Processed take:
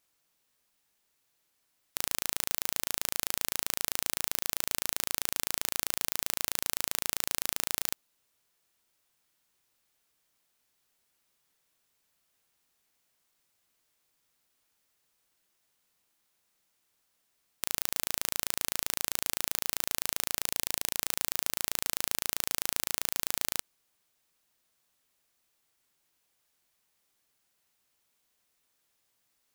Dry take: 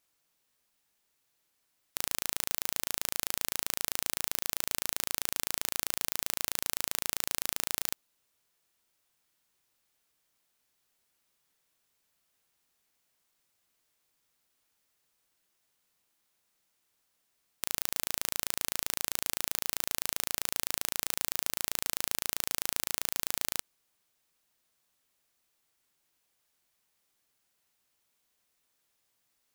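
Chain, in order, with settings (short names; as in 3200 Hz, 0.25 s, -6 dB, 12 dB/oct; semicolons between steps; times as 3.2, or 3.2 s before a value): 20.45–20.97 bell 1300 Hz -8.5 dB 0.38 oct; gain +1 dB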